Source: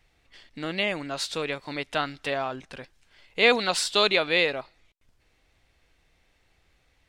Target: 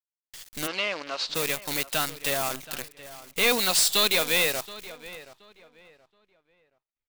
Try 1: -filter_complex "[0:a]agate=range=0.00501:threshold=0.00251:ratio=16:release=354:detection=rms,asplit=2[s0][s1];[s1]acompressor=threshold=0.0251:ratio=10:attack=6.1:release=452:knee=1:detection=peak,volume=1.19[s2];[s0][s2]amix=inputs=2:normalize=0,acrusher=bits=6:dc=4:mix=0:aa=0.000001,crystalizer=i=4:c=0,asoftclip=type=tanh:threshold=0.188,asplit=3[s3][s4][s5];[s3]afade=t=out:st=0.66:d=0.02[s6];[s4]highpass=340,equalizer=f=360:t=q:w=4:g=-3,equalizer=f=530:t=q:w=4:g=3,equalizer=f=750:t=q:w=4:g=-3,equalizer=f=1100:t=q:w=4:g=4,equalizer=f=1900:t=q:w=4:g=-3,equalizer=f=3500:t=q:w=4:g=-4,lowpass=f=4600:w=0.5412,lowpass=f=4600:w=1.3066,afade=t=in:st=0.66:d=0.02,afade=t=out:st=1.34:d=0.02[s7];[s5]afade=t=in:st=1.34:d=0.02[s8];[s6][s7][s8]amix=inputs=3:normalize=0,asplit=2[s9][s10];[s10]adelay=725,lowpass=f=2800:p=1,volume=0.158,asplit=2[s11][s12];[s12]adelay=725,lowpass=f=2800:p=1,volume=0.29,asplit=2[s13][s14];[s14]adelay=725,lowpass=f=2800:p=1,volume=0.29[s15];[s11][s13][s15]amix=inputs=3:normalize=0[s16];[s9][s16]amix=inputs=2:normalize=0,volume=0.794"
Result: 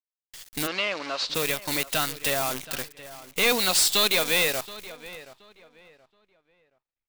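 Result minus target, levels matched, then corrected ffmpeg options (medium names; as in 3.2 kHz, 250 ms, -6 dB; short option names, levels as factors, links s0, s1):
compression: peak gain reduction -9 dB
-filter_complex "[0:a]agate=range=0.00501:threshold=0.00251:ratio=16:release=354:detection=rms,asplit=2[s0][s1];[s1]acompressor=threshold=0.00794:ratio=10:attack=6.1:release=452:knee=1:detection=peak,volume=1.19[s2];[s0][s2]amix=inputs=2:normalize=0,acrusher=bits=6:dc=4:mix=0:aa=0.000001,crystalizer=i=4:c=0,asoftclip=type=tanh:threshold=0.188,asplit=3[s3][s4][s5];[s3]afade=t=out:st=0.66:d=0.02[s6];[s4]highpass=340,equalizer=f=360:t=q:w=4:g=-3,equalizer=f=530:t=q:w=4:g=3,equalizer=f=750:t=q:w=4:g=-3,equalizer=f=1100:t=q:w=4:g=4,equalizer=f=1900:t=q:w=4:g=-3,equalizer=f=3500:t=q:w=4:g=-4,lowpass=f=4600:w=0.5412,lowpass=f=4600:w=1.3066,afade=t=in:st=0.66:d=0.02,afade=t=out:st=1.34:d=0.02[s7];[s5]afade=t=in:st=1.34:d=0.02[s8];[s6][s7][s8]amix=inputs=3:normalize=0,asplit=2[s9][s10];[s10]adelay=725,lowpass=f=2800:p=1,volume=0.158,asplit=2[s11][s12];[s12]adelay=725,lowpass=f=2800:p=1,volume=0.29,asplit=2[s13][s14];[s14]adelay=725,lowpass=f=2800:p=1,volume=0.29[s15];[s11][s13][s15]amix=inputs=3:normalize=0[s16];[s9][s16]amix=inputs=2:normalize=0,volume=0.794"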